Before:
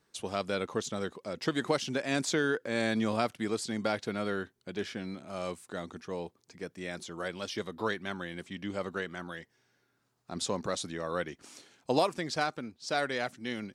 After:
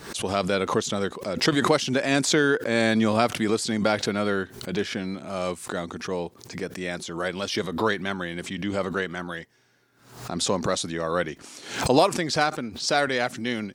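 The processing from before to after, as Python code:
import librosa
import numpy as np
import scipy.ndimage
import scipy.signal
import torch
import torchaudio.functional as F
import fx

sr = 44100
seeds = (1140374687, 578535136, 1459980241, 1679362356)

y = fx.pre_swell(x, sr, db_per_s=92.0)
y = y * 10.0 ** (8.0 / 20.0)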